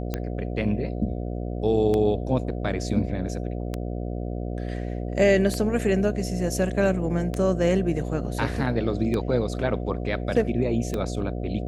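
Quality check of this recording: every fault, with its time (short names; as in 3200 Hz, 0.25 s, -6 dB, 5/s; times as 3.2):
buzz 60 Hz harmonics 12 -30 dBFS
tick 33 1/3 rpm -14 dBFS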